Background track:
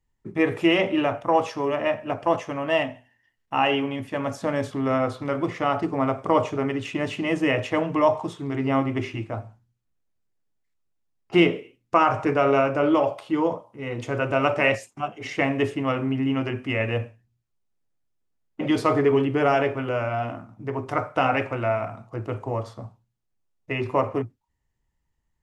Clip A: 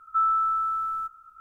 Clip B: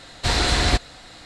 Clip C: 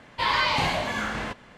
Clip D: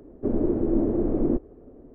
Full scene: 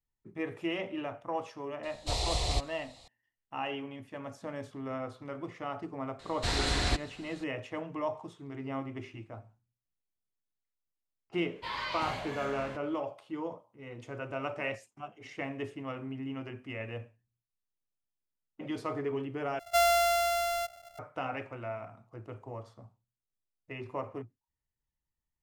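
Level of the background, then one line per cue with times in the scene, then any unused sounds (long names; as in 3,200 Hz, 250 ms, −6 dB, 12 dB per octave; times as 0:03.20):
background track −14.5 dB
0:01.83: mix in B −9.5 dB + phaser with its sweep stopped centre 640 Hz, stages 4
0:06.19: mix in B −10 dB
0:11.44: mix in C −13.5 dB
0:19.59: overwrite with A −2 dB + samples sorted by size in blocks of 64 samples
not used: D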